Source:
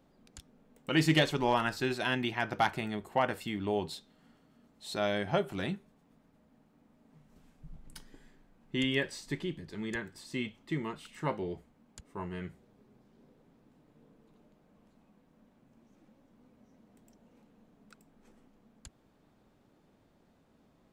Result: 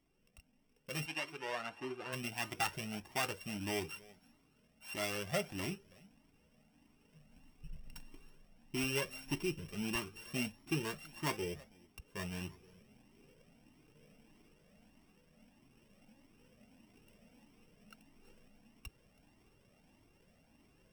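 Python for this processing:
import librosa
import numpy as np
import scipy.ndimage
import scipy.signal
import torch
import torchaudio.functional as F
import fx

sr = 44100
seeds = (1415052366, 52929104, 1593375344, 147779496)

y = np.r_[np.sort(x[:len(x) // 16 * 16].reshape(-1, 16), axis=1).ravel(), x[len(x) // 16 * 16:]]
y = fx.rider(y, sr, range_db=5, speed_s=0.5)
y = fx.bandpass_q(y, sr, hz=fx.line((1.05, 2100.0), (2.12, 440.0)), q=0.5, at=(1.05, 2.12), fade=0.02)
y = y + 10.0 ** (-22.5 / 20.0) * np.pad(y, (int(326 * sr / 1000.0), 0))[:len(y)]
y = fx.comb_cascade(y, sr, direction='rising', hz=1.6)
y = F.gain(torch.from_numpy(y), -1.5).numpy()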